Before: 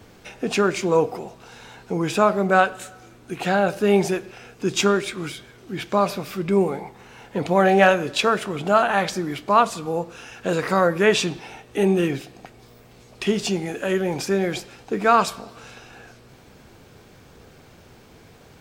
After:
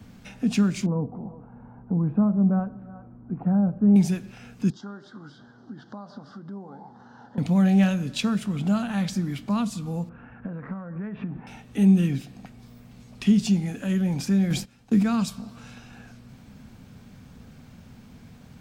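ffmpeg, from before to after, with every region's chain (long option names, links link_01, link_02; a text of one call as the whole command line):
ffmpeg -i in.wav -filter_complex "[0:a]asettb=1/sr,asplit=3[link_01][link_02][link_03];[link_01]atrim=end=0.864[link_04];[link_02]atrim=start=0.86:end=3.96,asetpts=PTS-STARTPTS,afade=type=in:duration=0.004:curve=qsin,afade=type=out:start_time=3.096:duration=0.004:curve=qsin,lowpass=frequency=1100:width=0.5412,lowpass=frequency=1100:width=1.3066,aecho=1:1:367:0.0668,atrim=end_sample=136710[link_05];[link_03]atrim=start=3.956[link_06];[link_04][link_05]acrossfade=duration=0.004:curve1=hsin:curve2=qsin[link_07];[link_07][link_06]acrossfade=duration=0.004:curve1=qsin:curve2=hsin,asettb=1/sr,asplit=3[link_08][link_09][link_10];[link_08]atrim=end=4.704[link_11];[link_09]atrim=start=4.7:end=7.38,asetpts=PTS-STARTPTS,afade=type=in:duration=0.004:curve=qsin,afade=type=out:start_time=2.676:duration=0.004:curve=qsin,acompressor=threshold=-38dB:ratio=2.5:attack=3.2:release=140:knee=1:detection=peak,asuperstop=centerf=2400:order=4:qfactor=1.1,highpass=170,equalizer=frequency=180:width_type=q:width=4:gain=-8,equalizer=frequency=830:width_type=q:width=4:gain=6,equalizer=frequency=1500:width_type=q:width=4:gain=4,equalizer=frequency=3700:width_type=q:width=4:gain=-5,lowpass=frequency=4700:width=0.5412,lowpass=frequency=4700:width=1.3066[link_12];[link_10]atrim=start=7.376[link_13];[link_11][link_12]acrossfade=duration=0.004:curve1=hsin:curve2=qsin[link_14];[link_14][link_13]acrossfade=duration=0.004:curve1=qsin:curve2=hsin,asettb=1/sr,asplit=3[link_15][link_16][link_17];[link_15]atrim=end=10.094[link_18];[link_16]atrim=start=10.09:end=11.47,asetpts=PTS-STARTPTS,afade=type=in:duration=0.004:curve=qsin,afade=type=out:start_time=1.376:duration=0.004:curve=qsin,lowpass=frequency=1700:width=0.5412,lowpass=frequency=1700:width=1.3066,acompressor=threshold=-30dB:ratio=6:attack=3.2:release=140:knee=1:detection=peak[link_19];[link_17]atrim=start=11.466[link_20];[link_18][link_19]acrossfade=duration=0.004:curve1=hsin:curve2=qsin[link_21];[link_21][link_20]acrossfade=duration=0.004:curve1=qsin:curve2=hsin,asettb=1/sr,asplit=3[link_22][link_23][link_24];[link_22]atrim=end=14.504[link_25];[link_23]atrim=start=14.5:end=15.03,asetpts=PTS-STARTPTS,afade=type=in:duration=0.004:curve=qsin,afade=type=out:start_time=0.526:duration=0.004:curve=qsin,highshelf=frequency=7700:gain=4.5,acontrast=31,agate=range=-16dB:threshold=-35dB:ratio=16:release=100:detection=peak[link_26];[link_24]atrim=start=15.026[link_27];[link_25][link_26]acrossfade=duration=0.004:curve1=hsin:curve2=qsin[link_28];[link_28][link_27]acrossfade=duration=0.004:curve1=qsin:curve2=hsin,lowshelf=frequency=290:width_type=q:width=3:gain=7,acrossover=split=330|3000[link_29][link_30][link_31];[link_30]acompressor=threshold=-37dB:ratio=2[link_32];[link_29][link_32][link_31]amix=inputs=3:normalize=0,volume=-5dB" out.wav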